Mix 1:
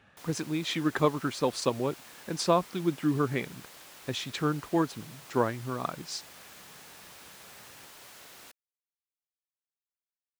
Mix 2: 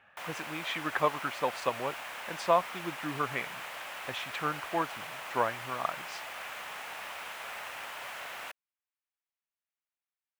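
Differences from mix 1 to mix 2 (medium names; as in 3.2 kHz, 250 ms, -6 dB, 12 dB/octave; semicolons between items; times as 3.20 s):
speech -11.5 dB; master: add high-order bell 1.3 kHz +13 dB 2.8 oct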